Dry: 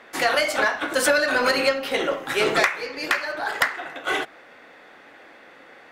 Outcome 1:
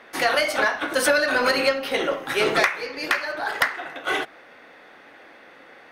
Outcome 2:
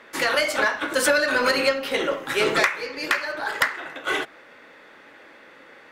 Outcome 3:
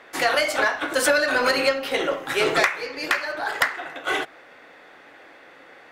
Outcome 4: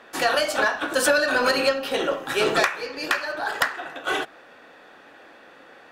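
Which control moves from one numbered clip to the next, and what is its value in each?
band-stop, frequency: 7.4 kHz, 730 Hz, 220 Hz, 2.1 kHz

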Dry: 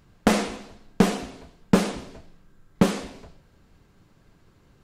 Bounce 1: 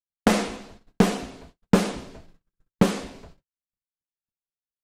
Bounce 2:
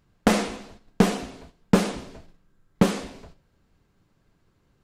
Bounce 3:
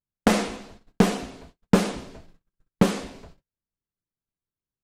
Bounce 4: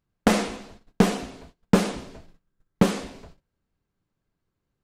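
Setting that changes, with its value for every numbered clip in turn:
gate, range: -57 dB, -8 dB, -39 dB, -22 dB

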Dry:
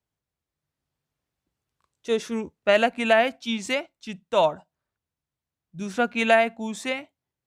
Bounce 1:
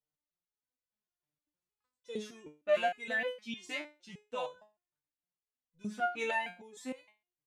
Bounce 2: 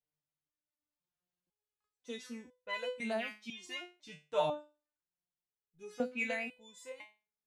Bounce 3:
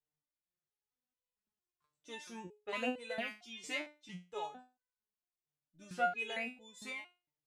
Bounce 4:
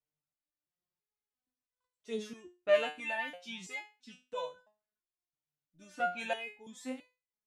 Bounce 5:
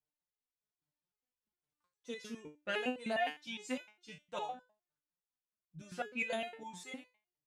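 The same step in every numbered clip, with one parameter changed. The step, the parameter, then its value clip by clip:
resonator arpeggio, rate: 6.5 Hz, 2 Hz, 4.4 Hz, 3 Hz, 9.8 Hz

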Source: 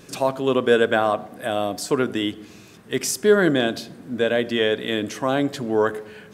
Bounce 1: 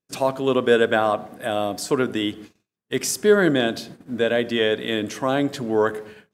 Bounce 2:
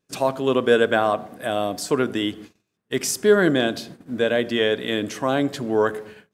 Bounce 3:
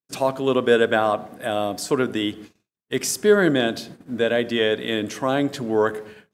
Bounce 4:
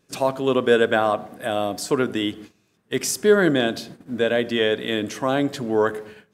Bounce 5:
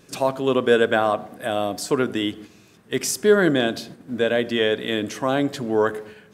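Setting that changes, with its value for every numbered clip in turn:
gate, range: -43 dB, -31 dB, -56 dB, -19 dB, -6 dB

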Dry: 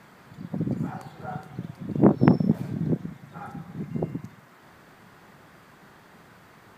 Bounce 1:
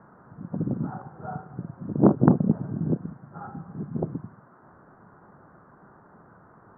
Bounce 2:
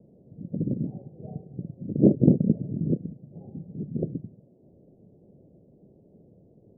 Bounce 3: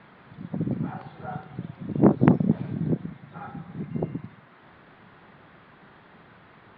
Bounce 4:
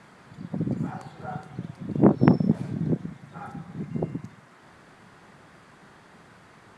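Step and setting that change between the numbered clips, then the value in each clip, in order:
steep low-pass, frequency: 1.5 kHz, 580 Hz, 3.9 kHz, 11 kHz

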